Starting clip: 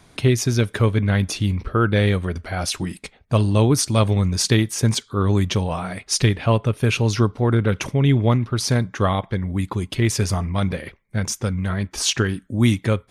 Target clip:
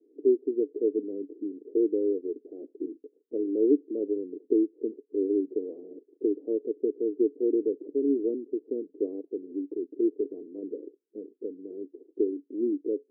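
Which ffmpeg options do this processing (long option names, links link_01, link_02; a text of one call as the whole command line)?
ffmpeg -i in.wav -af "asuperpass=centerf=360:order=8:qfactor=2" out.wav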